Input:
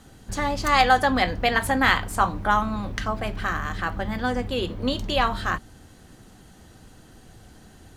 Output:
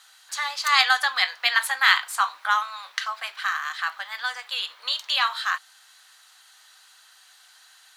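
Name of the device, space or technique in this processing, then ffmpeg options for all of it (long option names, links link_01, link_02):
headphones lying on a table: -af "highpass=frequency=1100:width=0.5412,highpass=frequency=1100:width=1.3066,equalizer=frequency=4000:width_type=o:width=0.49:gain=6.5,volume=2.5dB"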